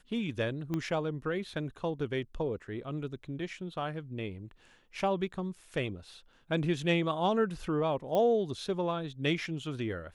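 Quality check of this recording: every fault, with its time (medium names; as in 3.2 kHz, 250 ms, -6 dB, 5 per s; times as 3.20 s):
0.74 s: pop -21 dBFS
8.15 s: pop -19 dBFS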